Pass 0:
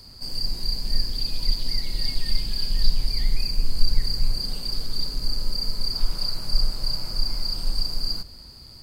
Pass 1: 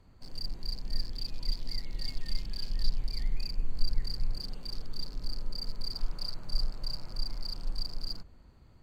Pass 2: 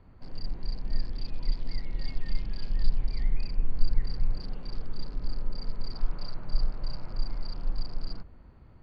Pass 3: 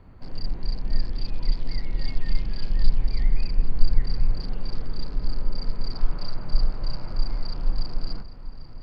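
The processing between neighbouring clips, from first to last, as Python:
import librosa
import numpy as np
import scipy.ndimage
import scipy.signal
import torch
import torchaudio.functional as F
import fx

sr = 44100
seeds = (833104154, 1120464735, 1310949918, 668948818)

y1 = fx.wiener(x, sr, points=9)
y1 = F.gain(torch.from_numpy(y1), -8.5).numpy()
y2 = scipy.signal.sosfilt(scipy.signal.butter(2, 2400.0, 'lowpass', fs=sr, output='sos'), y1)
y2 = F.gain(torch.from_numpy(y2), 4.5).numpy()
y3 = fx.echo_feedback(y2, sr, ms=794, feedback_pct=56, wet_db=-16.0)
y3 = F.gain(torch.from_numpy(y3), 5.5).numpy()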